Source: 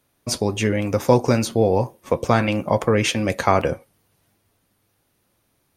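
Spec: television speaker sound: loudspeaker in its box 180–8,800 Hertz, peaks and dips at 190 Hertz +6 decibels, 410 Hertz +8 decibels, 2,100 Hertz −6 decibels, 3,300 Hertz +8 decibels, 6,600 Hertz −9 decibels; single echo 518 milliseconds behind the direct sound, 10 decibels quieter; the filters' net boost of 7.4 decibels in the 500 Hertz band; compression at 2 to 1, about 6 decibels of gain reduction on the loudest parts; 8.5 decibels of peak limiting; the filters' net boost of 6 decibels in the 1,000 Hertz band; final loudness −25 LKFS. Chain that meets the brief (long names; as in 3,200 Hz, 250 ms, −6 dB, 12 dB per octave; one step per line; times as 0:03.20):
parametric band 500 Hz +3 dB
parametric band 1,000 Hz +6.5 dB
downward compressor 2 to 1, threshold −17 dBFS
brickwall limiter −10 dBFS
loudspeaker in its box 180–8,800 Hz, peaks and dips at 190 Hz +6 dB, 410 Hz +8 dB, 2,100 Hz −6 dB, 3,300 Hz +8 dB, 6,600 Hz −9 dB
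single-tap delay 518 ms −10 dB
level −4.5 dB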